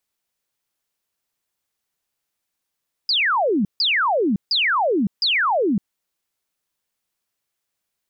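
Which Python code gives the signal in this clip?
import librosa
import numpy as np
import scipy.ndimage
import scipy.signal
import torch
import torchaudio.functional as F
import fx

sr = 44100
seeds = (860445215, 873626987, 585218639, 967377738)

y = fx.laser_zaps(sr, level_db=-16.0, start_hz=5100.0, end_hz=180.0, length_s=0.56, wave='sine', shots=4, gap_s=0.15)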